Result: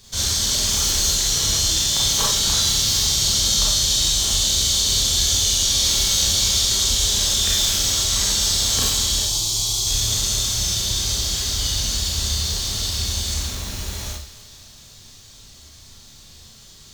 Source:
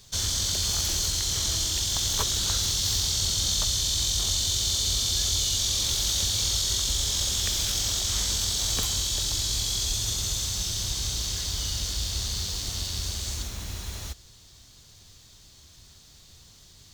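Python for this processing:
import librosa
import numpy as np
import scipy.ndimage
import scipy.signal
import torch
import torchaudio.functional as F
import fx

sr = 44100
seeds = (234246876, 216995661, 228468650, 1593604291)

y = fx.fixed_phaser(x, sr, hz=340.0, stages=8, at=(9.2, 9.87))
y = fx.echo_thinned(y, sr, ms=259, feedback_pct=68, hz=420.0, wet_db=-17.5)
y = fx.rev_schroeder(y, sr, rt60_s=0.45, comb_ms=28, drr_db=-4.0)
y = y * 10.0 ** (2.0 / 20.0)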